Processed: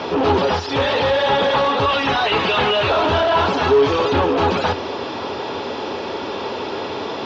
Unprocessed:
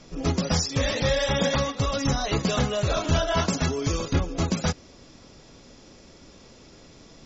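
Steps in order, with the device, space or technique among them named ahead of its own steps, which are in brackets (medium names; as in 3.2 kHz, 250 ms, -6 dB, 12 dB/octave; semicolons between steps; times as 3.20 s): 1.88–2.90 s: peaking EQ 2.5 kHz +12 dB 1.5 oct; overdrive pedal into a guitar cabinet (overdrive pedal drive 36 dB, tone 4.9 kHz, clips at -12 dBFS; cabinet simulation 83–3700 Hz, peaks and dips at 91 Hz +9 dB, 160 Hz -6 dB, 410 Hz +8 dB, 890 Hz +9 dB, 2.1 kHz -7 dB)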